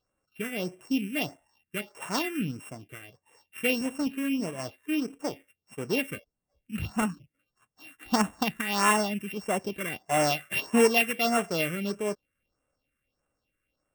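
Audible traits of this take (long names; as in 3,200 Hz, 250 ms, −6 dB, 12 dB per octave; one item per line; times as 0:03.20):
a buzz of ramps at a fixed pitch in blocks of 16 samples
phaser sweep stages 4, 1.6 Hz, lowest notch 760–4,500 Hz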